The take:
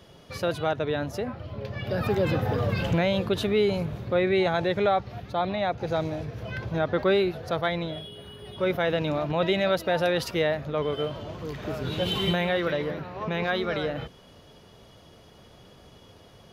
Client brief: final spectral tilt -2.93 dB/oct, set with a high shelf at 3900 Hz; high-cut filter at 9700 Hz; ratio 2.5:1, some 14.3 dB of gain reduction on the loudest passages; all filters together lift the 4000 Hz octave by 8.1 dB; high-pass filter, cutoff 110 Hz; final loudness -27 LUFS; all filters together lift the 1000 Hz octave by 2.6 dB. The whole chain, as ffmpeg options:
-af "highpass=110,lowpass=9.7k,equalizer=f=1k:t=o:g=3,highshelf=f=3.9k:g=8,equalizer=f=4k:t=o:g=5.5,acompressor=threshold=-40dB:ratio=2.5,volume=11dB"

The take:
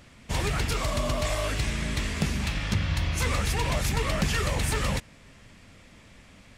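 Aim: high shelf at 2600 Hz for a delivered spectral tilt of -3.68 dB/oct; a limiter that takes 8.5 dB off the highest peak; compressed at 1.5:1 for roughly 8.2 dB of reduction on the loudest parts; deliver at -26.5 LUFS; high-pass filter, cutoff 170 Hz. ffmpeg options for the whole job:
-af "highpass=170,highshelf=f=2.6k:g=5,acompressor=threshold=-46dB:ratio=1.5,volume=11dB,alimiter=limit=-18dB:level=0:latency=1"

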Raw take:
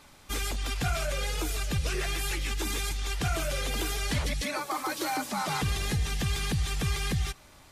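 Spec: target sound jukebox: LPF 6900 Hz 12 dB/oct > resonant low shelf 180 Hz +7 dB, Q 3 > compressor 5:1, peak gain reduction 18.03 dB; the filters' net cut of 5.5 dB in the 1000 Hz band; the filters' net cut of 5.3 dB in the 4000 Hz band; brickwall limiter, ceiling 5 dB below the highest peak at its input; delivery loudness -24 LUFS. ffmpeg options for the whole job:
-af "equalizer=f=1k:t=o:g=-7,equalizer=f=4k:t=o:g=-6,alimiter=level_in=0.5dB:limit=-24dB:level=0:latency=1,volume=-0.5dB,lowpass=6.9k,lowshelf=f=180:t=q:w=3:g=7,acompressor=threshold=-38dB:ratio=5,volume=17.5dB"

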